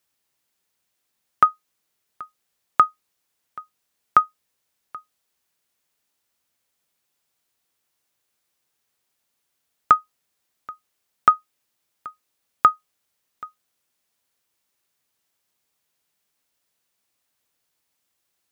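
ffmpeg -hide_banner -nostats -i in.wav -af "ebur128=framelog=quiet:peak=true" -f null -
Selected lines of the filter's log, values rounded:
Integrated loudness:
  I:         -20.8 LUFS
  Threshold: -34.4 LUFS
Loudness range:
  LRA:         4.7 LU
  Threshold: -47.7 LUFS
  LRA low:   -29.4 LUFS
  LRA high:  -24.7 LUFS
True peak:
  Peak:       -1.8 dBFS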